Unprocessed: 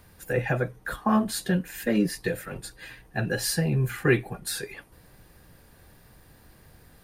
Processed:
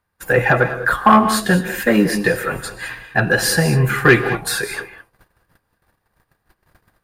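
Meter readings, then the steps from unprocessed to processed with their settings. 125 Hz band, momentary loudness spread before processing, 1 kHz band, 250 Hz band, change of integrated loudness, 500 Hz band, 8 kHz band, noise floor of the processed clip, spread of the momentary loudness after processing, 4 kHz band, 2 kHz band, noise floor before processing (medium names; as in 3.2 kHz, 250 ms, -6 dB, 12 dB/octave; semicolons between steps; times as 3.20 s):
+8.5 dB, 15 LU, +16.0 dB, +8.5 dB, +11.0 dB, +10.5 dB, +8.5 dB, -72 dBFS, 13 LU, +10.0 dB, +15.0 dB, -56 dBFS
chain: gate -49 dBFS, range -31 dB; peaking EQ 1.2 kHz +10.5 dB 1.7 oct; saturation -9 dBFS, distortion -20 dB; gated-style reverb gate 230 ms rising, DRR 10 dB; trim +8 dB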